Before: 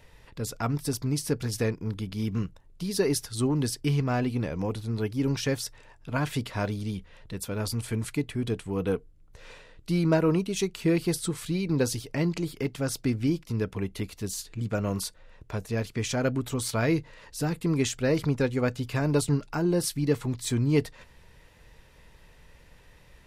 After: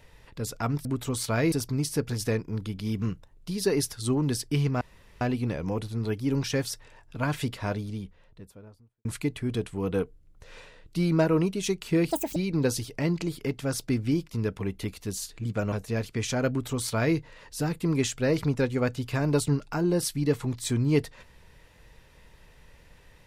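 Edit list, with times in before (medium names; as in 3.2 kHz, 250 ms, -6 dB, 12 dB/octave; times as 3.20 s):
4.14 s: insert room tone 0.40 s
6.32–7.98 s: studio fade out
11.04–11.52 s: speed 191%
14.88–15.53 s: delete
16.30–16.97 s: copy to 0.85 s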